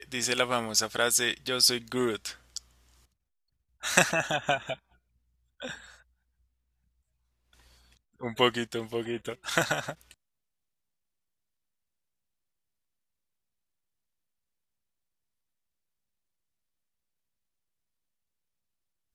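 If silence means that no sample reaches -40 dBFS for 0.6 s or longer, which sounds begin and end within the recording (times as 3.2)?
3.83–4.75
5.61–5.84
8.21–10.11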